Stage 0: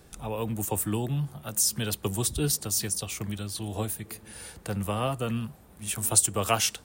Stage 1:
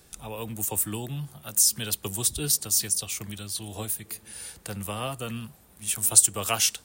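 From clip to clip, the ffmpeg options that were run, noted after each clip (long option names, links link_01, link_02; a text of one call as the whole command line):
ffmpeg -i in.wav -af "highshelf=frequency=2200:gain=10,volume=-5dB" out.wav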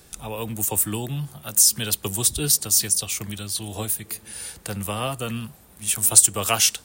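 ffmpeg -i in.wav -af "asoftclip=type=tanh:threshold=-5.5dB,volume=5dB" out.wav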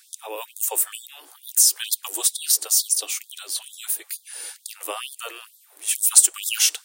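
ffmpeg -i in.wav -af "afftfilt=real='re*gte(b*sr/1024,270*pow(3400/270,0.5+0.5*sin(2*PI*2.2*pts/sr)))':imag='im*gte(b*sr/1024,270*pow(3400/270,0.5+0.5*sin(2*PI*2.2*pts/sr)))':win_size=1024:overlap=0.75" out.wav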